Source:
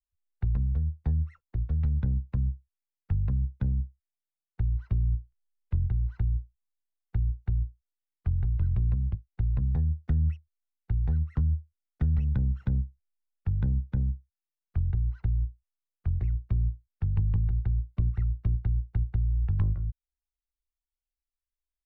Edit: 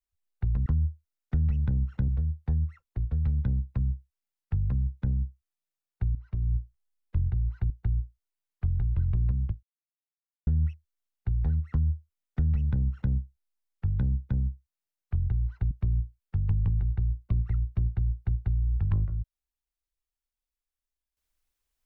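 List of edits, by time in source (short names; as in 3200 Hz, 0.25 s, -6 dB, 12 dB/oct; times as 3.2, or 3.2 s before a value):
4.73–5.12 fade in, from -13.5 dB
6.28–7.33 cut
9.26–10.1 mute
11.34–12.76 copy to 0.66
15.34–16.39 cut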